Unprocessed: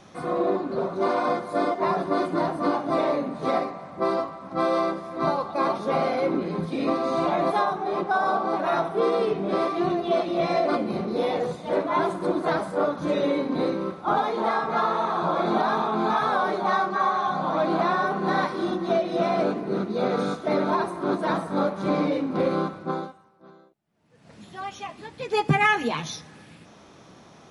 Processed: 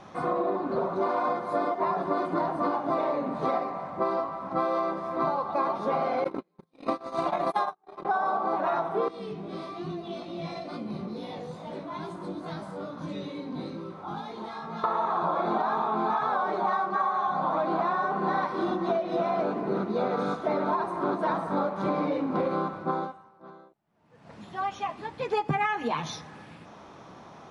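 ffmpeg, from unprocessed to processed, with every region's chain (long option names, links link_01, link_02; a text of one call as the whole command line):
ffmpeg -i in.wav -filter_complex "[0:a]asettb=1/sr,asplit=3[link_01][link_02][link_03];[link_01]atrim=end=6.244[link_04];[link_02]atrim=start=6.24:end=8.05,asetpts=PTS-STARTPTS,afade=type=in:duration=0.004:curve=qsin,afade=type=out:start_time=1.806:duration=0.004:curve=qsin,aemphasis=mode=production:type=75kf,agate=range=-47dB:threshold=-23dB:ratio=16:release=100:detection=peak[link_05];[link_03]atrim=start=8.046[link_06];[link_04][link_05]acrossfade=duration=0.004:curve1=hsin:curve2=qsin[link_07];[link_07][link_06]acrossfade=duration=0.004:curve1=qsin:curve2=hsin,asettb=1/sr,asplit=3[link_08][link_09][link_10];[link_08]atrim=end=9.084[link_11];[link_09]atrim=start=9.08:end=14.84,asetpts=PTS-STARTPTS,afade=type=in:duration=0.004:curve=qsin,afade=type=out:start_time=5.756:duration=0.004:curve=qsin,acrossover=split=230|3000[link_12][link_13][link_14];[link_13]acompressor=threshold=-38dB:ratio=10:attack=3.2:release=140:knee=2.83:detection=peak[link_15];[link_12][link_15][link_14]amix=inputs=3:normalize=0,flanger=delay=17.5:depth=3.2:speed=2.3[link_16];[link_10]atrim=start=14.836[link_17];[link_11][link_16]acrossfade=duration=0.004:curve1=hsin:curve2=qsin[link_18];[link_18][link_17]acrossfade=duration=0.004:curve1=qsin:curve2=hsin,lowpass=frequency=3700:poles=1,equalizer=frequency=950:width=1.2:gain=6.5,acompressor=threshold=-24dB:ratio=6" out.wav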